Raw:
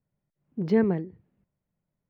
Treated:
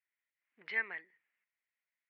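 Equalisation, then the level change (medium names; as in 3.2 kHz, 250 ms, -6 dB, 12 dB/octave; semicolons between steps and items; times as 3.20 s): resonant high-pass 2 kHz, resonance Q 3.6; distance through air 480 m; treble shelf 2.6 kHz +10 dB; 0.0 dB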